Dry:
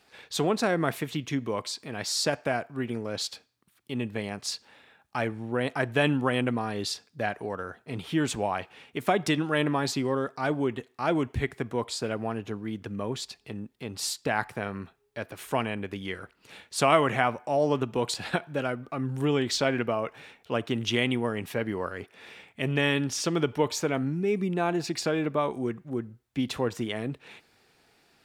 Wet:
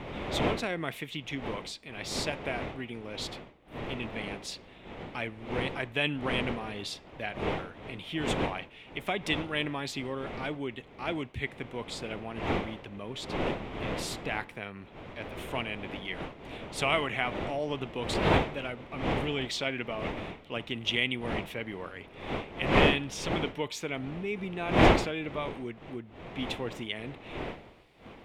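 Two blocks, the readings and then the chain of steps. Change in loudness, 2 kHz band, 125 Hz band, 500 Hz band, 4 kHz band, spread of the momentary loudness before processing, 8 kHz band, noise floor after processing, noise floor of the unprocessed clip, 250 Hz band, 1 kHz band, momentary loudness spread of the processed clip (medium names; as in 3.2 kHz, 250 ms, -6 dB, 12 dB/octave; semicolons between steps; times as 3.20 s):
-3.5 dB, -1.0 dB, -3.5 dB, -4.5 dB, -1.0 dB, 12 LU, -8.5 dB, -52 dBFS, -67 dBFS, -4.5 dB, -3.0 dB, 13 LU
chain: wind noise 620 Hz -27 dBFS; high-order bell 2.7 kHz +9.5 dB 1.1 oct; trim -8.5 dB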